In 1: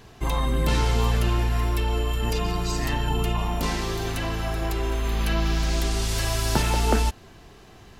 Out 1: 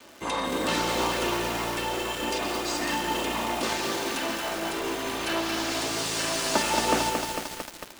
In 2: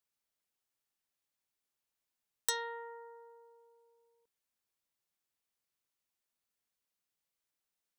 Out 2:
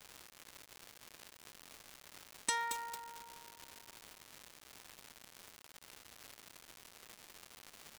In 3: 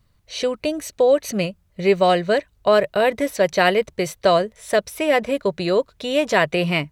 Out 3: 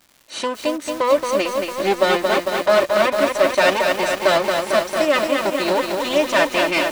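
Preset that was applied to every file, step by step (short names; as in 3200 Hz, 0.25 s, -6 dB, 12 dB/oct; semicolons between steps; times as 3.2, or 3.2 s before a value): minimum comb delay 3.3 ms; HPF 240 Hz 12 dB/oct; downsampling 22050 Hz; crackle 320/s -40 dBFS; lo-fi delay 0.225 s, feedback 80%, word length 6-bit, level -4 dB; gain +1.5 dB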